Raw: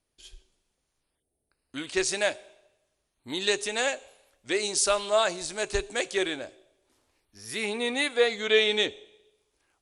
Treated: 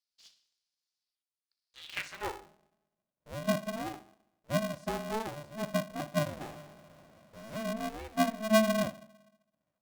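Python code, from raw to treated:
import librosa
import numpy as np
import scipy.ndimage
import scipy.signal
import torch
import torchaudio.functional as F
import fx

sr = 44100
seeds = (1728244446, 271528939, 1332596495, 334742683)

p1 = fx.filter_sweep_bandpass(x, sr, from_hz=4800.0, to_hz=410.0, start_s=1.78, end_s=2.47, q=4.3)
p2 = p1 + fx.echo_thinned(p1, sr, ms=62, feedback_pct=36, hz=160.0, wet_db=-13.5, dry=0)
p3 = fx.power_curve(p2, sr, exponent=0.5, at=(6.41, 7.63))
y = p3 * np.sign(np.sin(2.0 * np.pi * 220.0 * np.arange(len(p3)) / sr))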